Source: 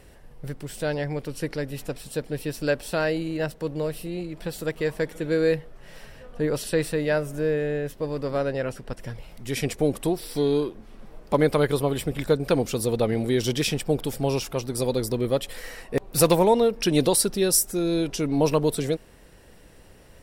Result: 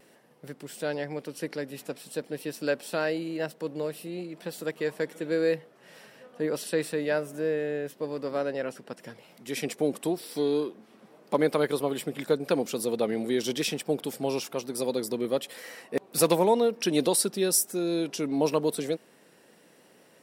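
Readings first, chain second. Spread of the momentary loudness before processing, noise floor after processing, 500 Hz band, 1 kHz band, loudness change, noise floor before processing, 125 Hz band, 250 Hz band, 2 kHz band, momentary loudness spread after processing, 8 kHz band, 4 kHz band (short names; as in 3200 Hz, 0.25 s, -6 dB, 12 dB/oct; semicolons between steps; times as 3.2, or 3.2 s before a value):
12 LU, -59 dBFS, -3.5 dB, -3.5 dB, -4.0 dB, -50 dBFS, -11.0 dB, -4.0 dB, -3.5 dB, 12 LU, -3.5 dB, -3.5 dB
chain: HPF 180 Hz 24 dB/oct; vibrato 0.97 Hz 23 cents; gain -3.5 dB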